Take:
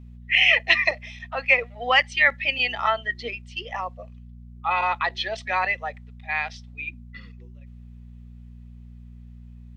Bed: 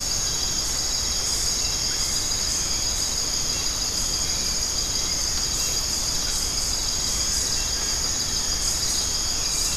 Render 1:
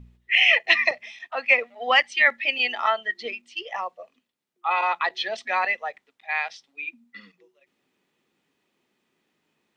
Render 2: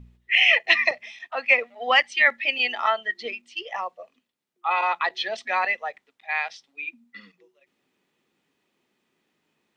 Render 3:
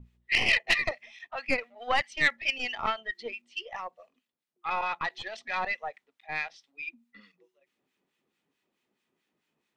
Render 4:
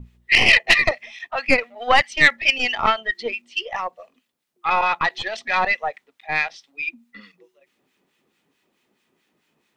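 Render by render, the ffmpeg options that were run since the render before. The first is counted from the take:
-af "bandreject=f=60:t=h:w=4,bandreject=f=120:t=h:w=4,bandreject=f=180:t=h:w=4,bandreject=f=240:t=h:w=4"
-af anull
-filter_complex "[0:a]aeval=exprs='(tanh(3.55*val(0)+0.65)-tanh(0.65))/3.55':c=same,acrossover=split=1200[s0][s1];[s0]aeval=exprs='val(0)*(1-0.7/2+0.7/2*cos(2*PI*4.6*n/s))':c=same[s2];[s1]aeval=exprs='val(0)*(1-0.7/2-0.7/2*cos(2*PI*4.6*n/s))':c=same[s3];[s2][s3]amix=inputs=2:normalize=0"
-af "volume=3.55,alimiter=limit=0.794:level=0:latency=1"

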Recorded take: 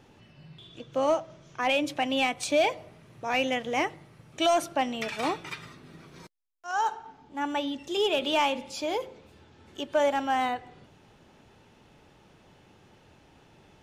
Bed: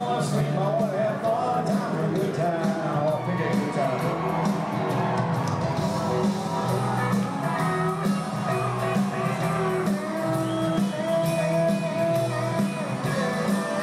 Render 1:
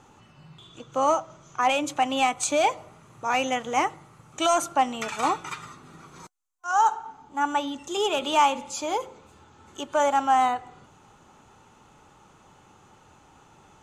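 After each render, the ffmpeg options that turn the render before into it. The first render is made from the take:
-af "superequalizer=9b=2.24:10b=2.82:15b=3.16:16b=1.58"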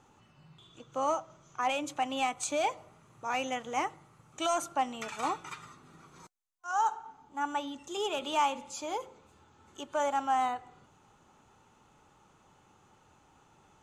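-af "volume=0.398"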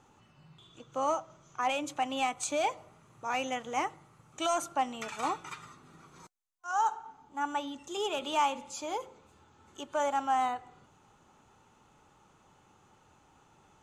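-af anull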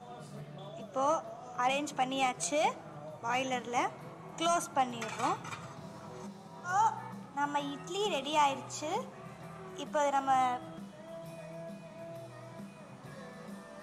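-filter_complex "[1:a]volume=0.075[s0];[0:a][s0]amix=inputs=2:normalize=0"

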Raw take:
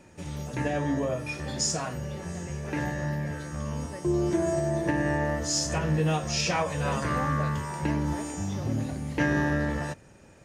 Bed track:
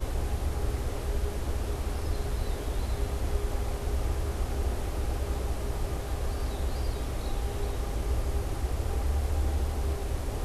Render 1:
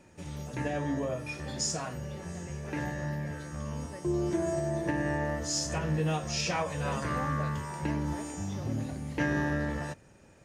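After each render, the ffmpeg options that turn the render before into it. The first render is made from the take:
-af "volume=0.631"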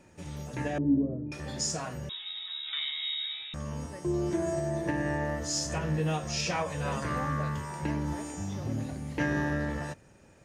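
-filter_complex "[0:a]asettb=1/sr,asplit=3[s0][s1][s2];[s0]atrim=end=0.784[s3];[s1]atrim=start=0.78:end=1.32,asetpts=PTS-STARTPTS,afade=t=in:d=0.004:c=qsin,afade=t=out:st=0.536:d=0.004:c=qsin,lowpass=f=300:t=q:w=2.7[s4];[s2]atrim=start=1.316[s5];[s3][s4]acrossfade=d=0.004:c1=hsin:c2=qsin[s6];[s6][s5]acrossfade=d=0.004:c1=qsin:c2=hsin,asettb=1/sr,asplit=3[s7][s8][s9];[s7]atrim=end=2.094[s10];[s8]atrim=start=2.09:end=3.54,asetpts=PTS-STARTPTS,afade=t=in:d=0.004:c=qsin,afade=t=out:st=1.446:d=0.004:c=qsin,lowpass=f=3300:t=q:w=0.5098,lowpass=f=3300:t=q:w=0.6013,lowpass=f=3300:t=q:w=0.9,lowpass=f=3300:t=q:w=2.563,afreqshift=-3900[s11];[s9]atrim=start=3.536[s12];[s10][s11]acrossfade=d=0.004:c1=hsin:c2=qsin[s13];[s13][s12]acrossfade=d=0.004:c1=qsin:c2=hsin"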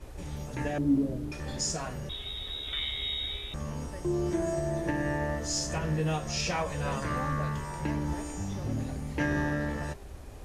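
-filter_complex "[1:a]volume=0.211[s0];[0:a][s0]amix=inputs=2:normalize=0"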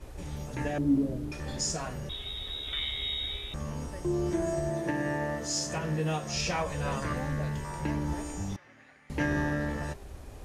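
-filter_complex "[0:a]asettb=1/sr,asplit=3[s0][s1][s2];[s0]atrim=end=4.704[s3];[s1]atrim=start=4.7:end=6.33,asetpts=PTS-STARTPTS,afade=t=in:d=0.004:c=qsin,afade=t=out:st=1.626:d=0.004:c=qsin,highpass=120[s4];[s2]atrim=start=6.326[s5];[s3][s4]acrossfade=d=0.004:c1=hsin:c2=qsin[s6];[s6][s5]acrossfade=d=0.004:c1=qsin:c2=hsin,asettb=1/sr,asplit=3[s7][s8][s9];[s7]atrim=end=7.134[s10];[s8]atrim=start=7.13:end=7.65,asetpts=PTS-STARTPTS,afade=t=in:d=0.004:c=qsin,afade=t=out:st=0.516:d=0.004:c=qsin,equalizer=f=1200:t=o:w=0.35:g=-14[s11];[s9]atrim=start=7.646[s12];[s10][s11]acrossfade=d=0.004:c1=hsin:c2=qsin[s13];[s13][s12]acrossfade=d=0.004:c1=qsin:c2=hsin,asettb=1/sr,asplit=3[s14][s15][s16];[s14]atrim=end=8.564[s17];[s15]atrim=start=8.56:end=9.1,asetpts=PTS-STARTPTS,afade=t=in:d=0.004:c=qsin,afade=t=out:st=0.536:d=0.004:c=qsin,bandpass=f=1900:t=q:w=2.9[s18];[s16]atrim=start=9.096[s19];[s17][s18]acrossfade=d=0.004:c1=hsin:c2=qsin[s20];[s20][s19]acrossfade=d=0.004:c1=qsin:c2=hsin"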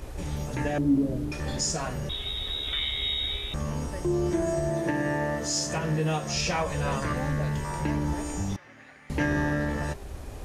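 -filter_complex "[0:a]asplit=2[s0][s1];[s1]alimiter=level_in=1.58:limit=0.0631:level=0:latency=1:release=323,volume=0.631,volume=1[s2];[s0][s2]amix=inputs=2:normalize=0,acompressor=mode=upward:threshold=0.00447:ratio=2.5"

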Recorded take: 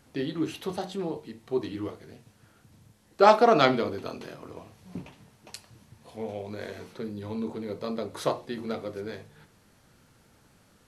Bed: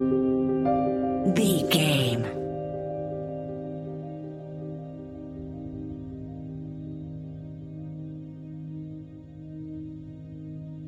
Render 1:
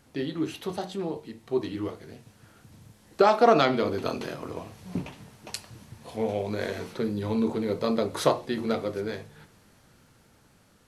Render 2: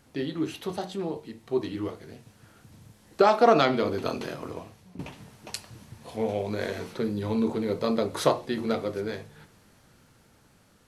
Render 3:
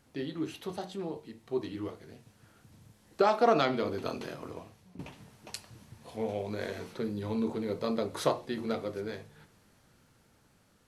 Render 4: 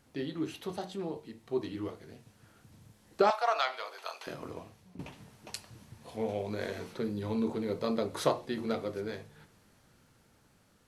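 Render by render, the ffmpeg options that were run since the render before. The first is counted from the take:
-af "alimiter=limit=0.2:level=0:latency=1:release=422,dynaudnorm=f=450:g=11:m=2.24"
-filter_complex "[0:a]asplit=2[s0][s1];[s0]atrim=end=4.99,asetpts=PTS-STARTPTS,afade=t=out:st=4.47:d=0.52:silence=0.11885[s2];[s1]atrim=start=4.99,asetpts=PTS-STARTPTS,afade=t=in:d=0.004:c=hsin:silence=0.11885[s3];[s2][s3]concat=n=2:v=0:a=1"
-af "volume=0.531"
-filter_complex "[0:a]asettb=1/sr,asplit=3[s0][s1][s2];[s0]atrim=end=3.304[s3];[s1]atrim=start=3.3:end=4.27,asetpts=PTS-STARTPTS,afade=t=in:d=0.004:c=qsin,afade=t=out:st=0.966:d=0.004:c=qsin,highpass=f=730:w=0.5412,highpass=f=730:w=1.3066[s4];[s2]atrim=start=4.266[s5];[s3][s4]acrossfade=d=0.004:c1=hsin:c2=qsin[s6];[s6][s5]acrossfade=d=0.004:c1=qsin:c2=hsin"

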